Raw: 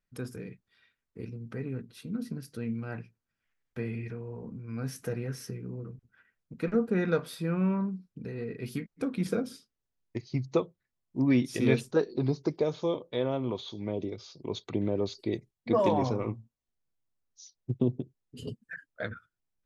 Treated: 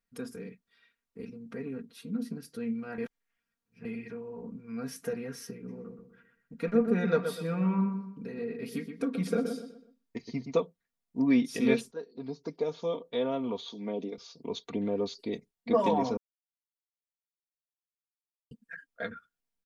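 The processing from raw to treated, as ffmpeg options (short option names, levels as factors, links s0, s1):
-filter_complex "[0:a]asplit=3[s0][s1][s2];[s0]afade=t=out:st=5.67:d=0.02[s3];[s1]asplit=2[s4][s5];[s5]adelay=124,lowpass=f=2700:p=1,volume=0.447,asplit=2[s6][s7];[s7]adelay=124,lowpass=f=2700:p=1,volume=0.36,asplit=2[s8][s9];[s9]adelay=124,lowpass=f=2700:p=1,volume=0.36,asplit=2[s10][s11];[s11]adelay=124,lowpass=f=2700:p=1,volume=0.36[s12];[s4][s6][s8][s10][s12]amix=inputs=5:normalize=0,afade=t=in:st=5.67:d=0.02,afade=t=out:st=10.51:d=0.02[s13];[s2]afade=t=in:st=10.51:d=0.02[s14];[s3][s13][s14]amix=inputs=3:normalize=0,asettb=1/sr,asplit=3[s15][s16][s17];[s15]atrim=end=13.714[s18];[s16]atrim=start=13.71:end=14.18,asetpts=PTS-STARTPTS,afade=t=in:d=0.004:c=qsin,afade=t=out:st=0.466:d=0.004:c=qsin,highpass=f=150:w=0.5412,highpass=f=150:w=1.3066[s19];[s17]atrim=start=14.176[s20];[s18][s19]acrossfade=d=0.004:c1=hsin:c2=qsin[s21];[s21][s20]acrossfade=d=0.004:c1=qsin:c2=hsin,asplit=6[s22][s23][s24][s25][s26][s27];[s22]atrim=end=2.982[s28];[s23]atrim=start=2.978:end=3.852,asetpts=PTS-STARTPTS,areverse[s29];[s24]atrim=start=3.848:end=11.92,asetpts=PTS-STARTPTS,afade=t=out:st=8.068:d=0.004:c=hsin:silence=0.141254[s30];[s25]atrim=start=11.92:end=16.17,asetpts=PTS-STARTPTS,afade=t=in:d=1.22:silence=0.141254,afade=t=out:st=4.246:d=0.004:c=hsin[s31];[s26]atrim=start=16.17:end=18.51,asetpts=PTS-STARTPTS,volume=0[s32];[s27]atrim=start=18.51,asetpts=PTS-STARTPTS,afade=t=in:d=0.004:c=hsin[s33];[s28][s29]acrossfade=d=0.004:c1=hsin:c2=hsin[s34];[s30][s31][s32][s33]concat=n=4:v=0:a=1[s35];[s34][s35]acrossfade=d=0.004:c1=hsin:c2=hsin,lowshelf=f=110:g=-7,aecho=1:1:4.3:0.72,volume=0.794"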